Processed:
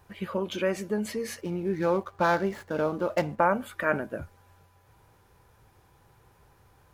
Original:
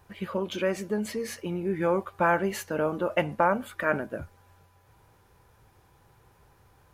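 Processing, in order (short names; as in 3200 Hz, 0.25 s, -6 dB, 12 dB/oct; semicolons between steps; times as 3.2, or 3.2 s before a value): 1.41–3.39 median filter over 15 samples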